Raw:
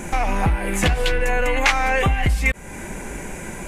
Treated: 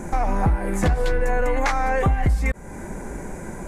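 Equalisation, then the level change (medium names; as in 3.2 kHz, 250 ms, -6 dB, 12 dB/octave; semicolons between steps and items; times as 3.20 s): peaking EQ 2.8 kHz -14.5 dB 0.97 oct; treble shelf 5.8 kHz -9.5 dB; 0.0 dB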